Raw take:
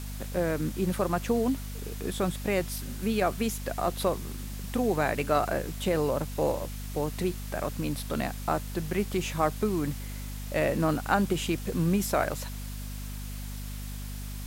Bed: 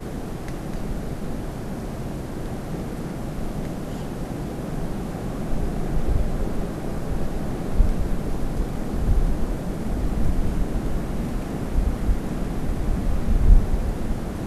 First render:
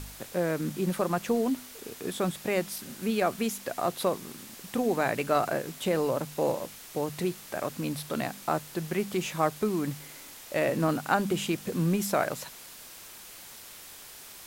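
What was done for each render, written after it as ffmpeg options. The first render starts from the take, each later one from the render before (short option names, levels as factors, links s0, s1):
-af "bandreject=f=50:t=h:w=4,bandreject=f=100:t=h:w=4,bandreject=f=150:t=h:w=4,bandreject=f=200:t=h:w=4,bandreject=f=250:t=h:w=4"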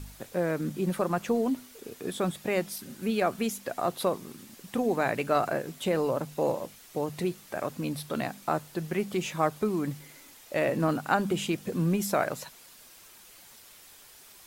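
-af "afftdn=nr=7:nf=-47"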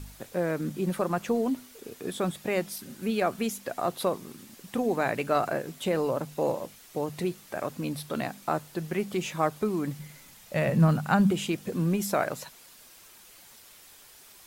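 -filter_complex "[0:a]asettb=1/sr,asplit=3[s0][s1][s2];[s0]atrim=end=9.994[s3];[s1]atrim=start=9.99:end=11.31,asetpts=PTS-STARTPTS,afade=t=in:d=0.004:c=qsin,afade=t=out:st=1.316:d=0.004:c=qsin,lowshelf=f=230:t=q:w=3:g=6.5[s4];[s2]atrim=start=11.306[s5];[s3][s4]acrossfade=d=0.004:c1=hsin:c2=qsin[s6];[s6][s5]acrossfade=d=0.004:c1=qsin:c2=hsin"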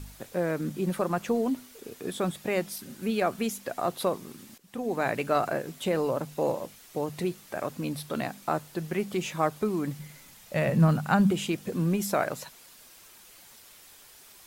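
-filter_complex "[0:a]asplit=2[s0][s1];[s0]atrim=end=4.58,asetpts=PTS-STARTPTS,afade=t=out:st=4.576:d=0.004:c=hsin:silence=0.125893[s2];[s1]atrim=start=4.58,asetpts=PTS-STARTPTS,afade=t=in:d=0.49:silence=0.125893[s3];[s2][s3]concat=n=2:v=0:a=1"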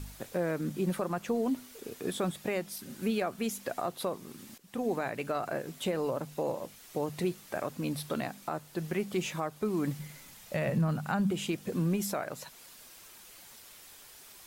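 -af "alimiter=limit=0.0891:level=0:latency=1:release=418"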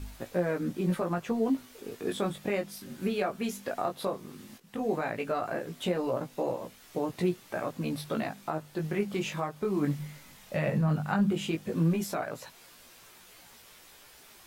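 -filter_complex "[0:a]flanger=delay=16.5:depth=4.2:speed=0.15,asplit=2[s0][s1];[s1]adynamicsmooth=sensitivity=5.5:basefreq=5700,volume=0.75[s2];[s0][s2]amix=inputs=2:normalize=0"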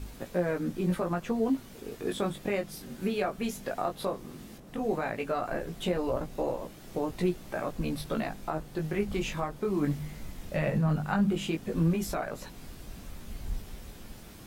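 -filter_complex "[1:a]volume=0.0891[s0];[0:a][s0]amix=inputs=2:normalize=0"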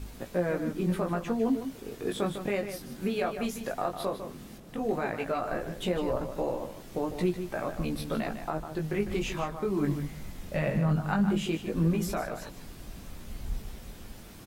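-filter_complex "[0:a]asplit=2[s0][s1];[s1]adelay=151.6,volume=0.355,highshelf=f=4000:g=-3.41[s2];[s0][s2]amix=inputs=2:normalize=0"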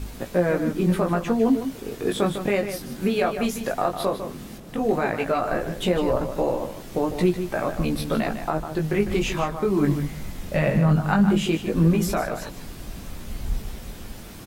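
-af "volume=2.37"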